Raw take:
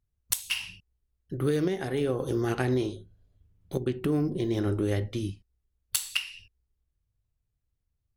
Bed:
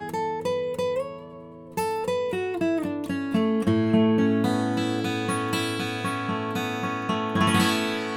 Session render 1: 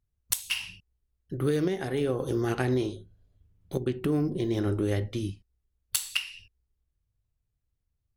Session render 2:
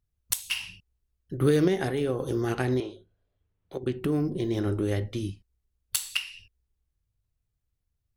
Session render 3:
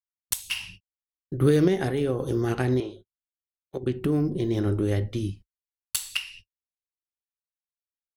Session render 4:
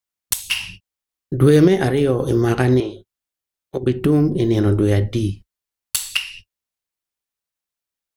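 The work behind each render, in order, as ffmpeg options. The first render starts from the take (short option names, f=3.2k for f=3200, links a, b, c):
-af anull
-filter_complex "[0:a]asettb=1/sr,asplit=3[a][b][c];[a]atrim=end=2.804[d];[b]atrim=start=2.8:end=3.83,asetpts=PTS-STARTPTS,afade=t=in:d=0.004:c=qsin,afade=t=out:st=1.026:d=0.004:c=qsin,acrossover=split=370 3800:gain=0.224 1 0.2[e][f][g];[e][f][g]amix=inputs=3:normalize=0[h];[c]atrim=start=3.826[i];[d][h]acrossfade=d=0.004:c1=hsin:c2=qsin[j];[j][i]acrossfade=d=0.004:c1=qsin:c2=hsin,asplit=3[k][l][m];[k]atrim=end=1.412[n];[l]atrim=start=1.408:end=1.912,asetpts=PTS-STARTPTS,volume=4.5dB[o];[m]atrim=start=1.908[p];[n][o]acrossfade=d=0.004:c1=hsin:c2=hsin[q];[q][p]acrossfade=d=0.004:c1=hsin:c2=hsin"
-af "agate=range=-44dB:threshold=-46dB:ratio=16:detection=peak,lowshelf=f=350:g=4"
-af "volume=8.5dB,alimiter=limit=-3dB:level=0:latency=1"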